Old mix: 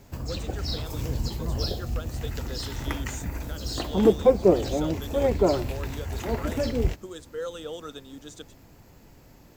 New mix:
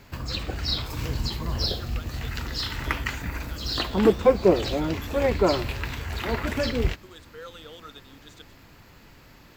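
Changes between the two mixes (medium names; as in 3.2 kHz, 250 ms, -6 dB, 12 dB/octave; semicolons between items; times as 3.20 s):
speech -10.0 dB; master: add high-order bell 2.2 kHz +8.5 dB 2.4 oct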